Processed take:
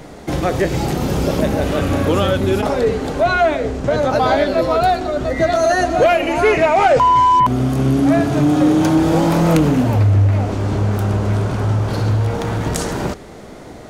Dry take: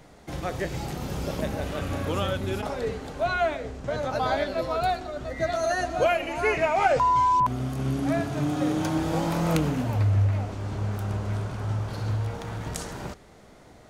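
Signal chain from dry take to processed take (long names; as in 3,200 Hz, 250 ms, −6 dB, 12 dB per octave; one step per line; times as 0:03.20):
parametric band 330 Hz +5 dB 1.7 octaves
in parallel at −1.5 dB: downward compressor, threshold −29 dBFS, peak gain reduction 13.5 dB
on the sum: soft clipping −12.5 dBFS, distortion −21 dB
level +7.5 dB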